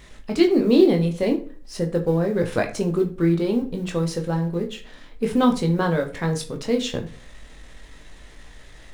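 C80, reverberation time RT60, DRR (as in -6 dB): 17.5 dB, 0.40 s, 2.5 dB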